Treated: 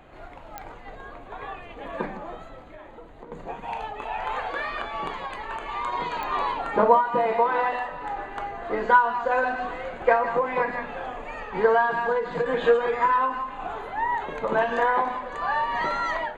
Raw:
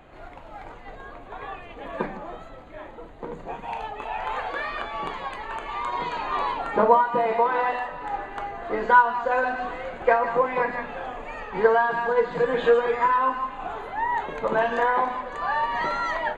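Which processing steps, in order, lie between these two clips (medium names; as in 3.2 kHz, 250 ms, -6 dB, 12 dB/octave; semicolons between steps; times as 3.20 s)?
2.62–3.32 s: compression 6:1, threshold -40 dBFS, peak gain reduction 10 dB; clicks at 0.58/6.23 s, -18 dBFS; endings held to a fixed fall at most 130 dB/s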